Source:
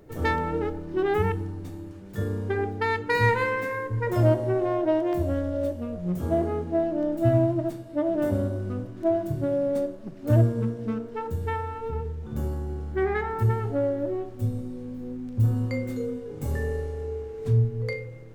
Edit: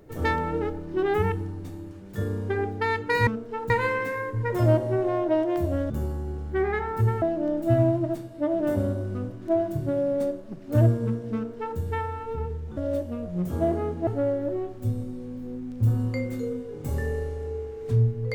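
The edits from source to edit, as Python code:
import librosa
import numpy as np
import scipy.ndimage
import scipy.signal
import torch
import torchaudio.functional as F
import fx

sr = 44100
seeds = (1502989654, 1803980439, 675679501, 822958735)

y = fx.edit(x, sr, fx.swap(start_s=5.47, length_s=1.3, other_s=12.32, other_length_s=1.32),
    fx.duplicate(start_s=10.9, length_s=0.43, to_s=3.27), tone=tone)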